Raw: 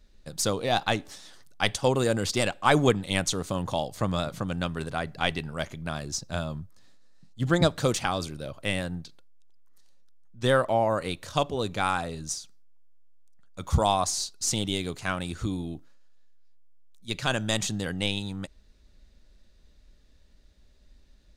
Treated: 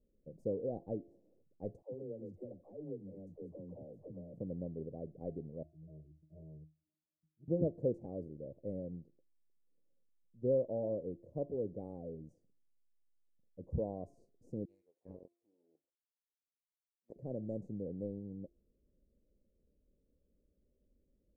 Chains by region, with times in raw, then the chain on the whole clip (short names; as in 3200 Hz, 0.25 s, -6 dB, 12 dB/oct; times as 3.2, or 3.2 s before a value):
1.82–4.34 compressor 5:1, threshold -33 dBFS + dispersion lows, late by 0.105 s, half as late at 390 Hz
5.63–7.48 octave resonator D#, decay 0.27 s + hard clip -37 dBFS
14.65–17.16 flange 1.8 Hz, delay 6 ms, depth 4.1 ms, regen +79% + LFO high-pass saw down 1.6 Hz 890–3100 Hz + Doppler distortion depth 0.78 ms
whole clip: elliptic low-pass 520 Hz, stop band 60 dB; tilt +3.5 dB/oct; de-hum 343.8 Hz, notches 36; gain -2 dB